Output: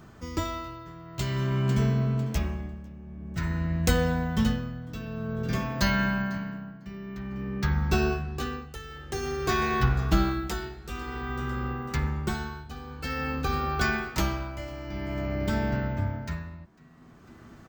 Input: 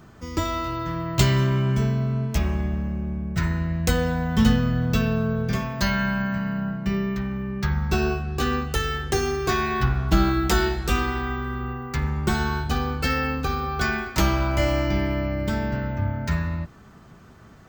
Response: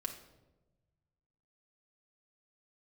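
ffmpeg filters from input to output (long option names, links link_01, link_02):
-filter_complex "[0:a]asplit=4[link_01][link_02][link_03][link_04];[link_02]adelay=499,afreqshift=80,volume=-18.5dB[link_05];[link_03]adelay=998,afreqshift=160,volume=-28.4dB[link_06];[link_04]adelay=1497,afreqshift=240,volume=-38.3dB[link_07];[link_01][link_05][link_06][link_07]amix=inputs=4:normalize=0,tremolo=f=0.51:d=0.82,volume=-1.5dB"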